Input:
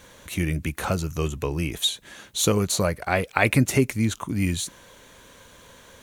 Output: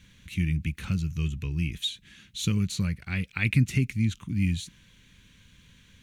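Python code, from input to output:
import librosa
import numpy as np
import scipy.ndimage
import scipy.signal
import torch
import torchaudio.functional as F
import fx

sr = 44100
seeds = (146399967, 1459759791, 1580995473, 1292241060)

y = fx.curve_eq(x, sr, hz=(190.0, 650.0, 2500.0, 11000.0), db=(0, -29, -3, -16))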